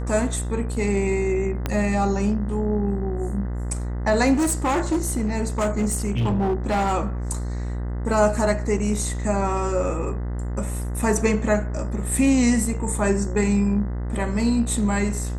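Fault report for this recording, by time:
mains buzz 60 Hz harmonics 34 −27 dBFS
0:01.66: click −10 dBFS
0:04.33–0:06.93: clipping −17.5 dBFS

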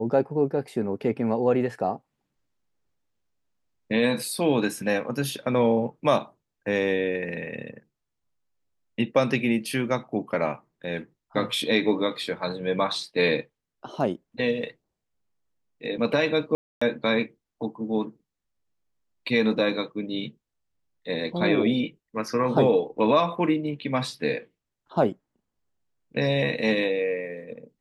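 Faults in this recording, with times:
0:16.55–0:16.82: drop-out 265 ms

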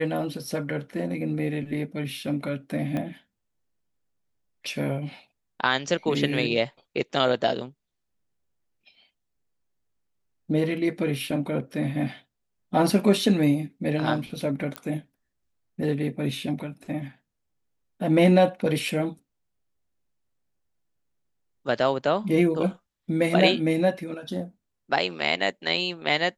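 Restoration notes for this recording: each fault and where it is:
0:02.97: click −18 dBFS
0:14.76: click −16 dBFS

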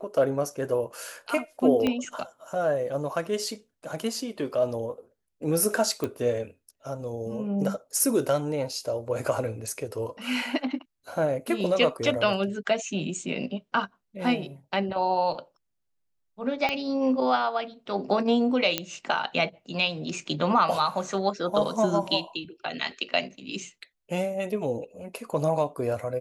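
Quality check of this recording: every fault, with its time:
0:01.87: click −13 dBFS
0:06.04: click −16 dBFS
0:16.69: click −13 dBFS
0:18.78: click −8 dBFS

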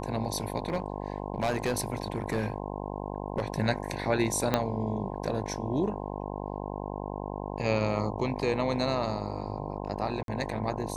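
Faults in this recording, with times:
mains buzz 50 Hz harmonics 21 −36 dBFS
0:00.68–0:03.42: clipping −23 dBFS
0:04.54: click −10 dBFS
0:10.23–0:10.28: drop-out 52 ms

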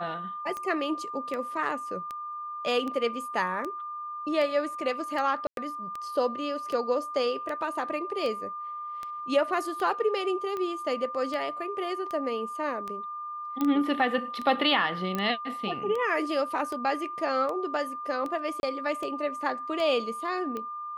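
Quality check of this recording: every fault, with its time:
scratch tick 78 rpm −22 dBFS
whistle 1,200 Hz −34 dBFS
0:05.47–0:05.57: drop-out 102 ms
0:13.61: click −16 dBFS
0:15.15: click −16 dBFS
0:18.60–0:18.63: drop-out 31 ms

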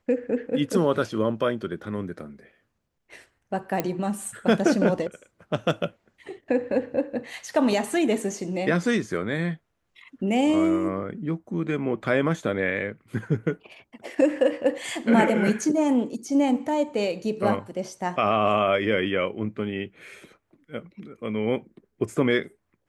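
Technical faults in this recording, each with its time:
0:03.80: click −10 dBFS

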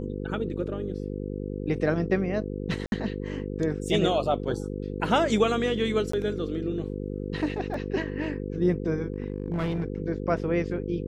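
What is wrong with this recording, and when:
mains buzz 50 Hz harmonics 10 −33 dBFS
0:02.86–0:02.92: drop-out 61 ms
0:06.12–0:06.13: drop-out 14 ms
0:07.74: drop-out 3 ms
0:09.14–0:09.84: clipping −23.5 dBFS

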